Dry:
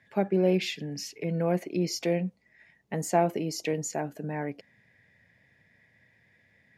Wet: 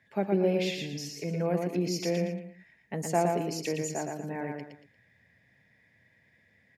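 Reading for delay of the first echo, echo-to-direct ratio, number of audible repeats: 0.116 s, -3.0 dB, 3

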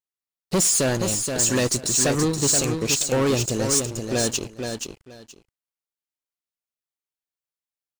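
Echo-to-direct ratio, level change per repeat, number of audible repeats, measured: -6.0 dB, -14.5 dB, 2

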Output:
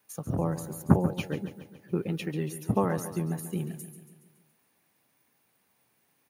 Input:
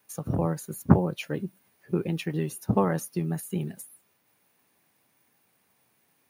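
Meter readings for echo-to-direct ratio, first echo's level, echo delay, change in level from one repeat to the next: -10.5 dB, -12.0 dB, 0.14 s, -5.0 dB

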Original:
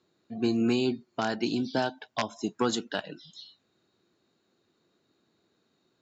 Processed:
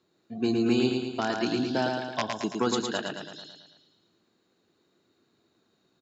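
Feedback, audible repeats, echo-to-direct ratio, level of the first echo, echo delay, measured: 55%, 6, -2.5 dB, -4.0 dB, 0.111 s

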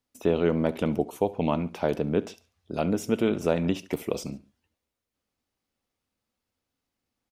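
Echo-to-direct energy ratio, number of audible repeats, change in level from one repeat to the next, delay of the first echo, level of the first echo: -20.0 dB, 2, -6.0 dB, 70 ms, -21.0 dB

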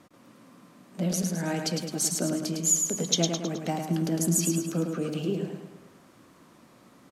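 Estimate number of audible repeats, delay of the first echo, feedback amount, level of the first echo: 5, 0.106 s, 48%, -5.0 dB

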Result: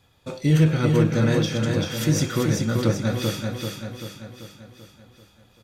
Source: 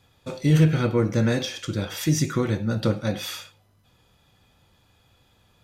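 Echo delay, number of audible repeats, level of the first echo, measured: 0.388 s, 6, -4.0 dB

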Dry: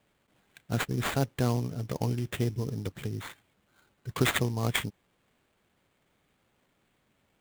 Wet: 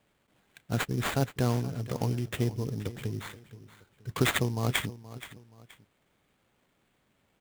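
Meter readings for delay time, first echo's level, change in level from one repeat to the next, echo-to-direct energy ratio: 0.475 s, -16.0 dB, -9.0 dB, -15.5 dB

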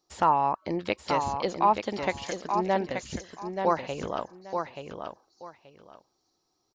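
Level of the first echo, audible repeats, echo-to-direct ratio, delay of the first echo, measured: -6.0 dB, 2, -6.0 dB, 0.88 s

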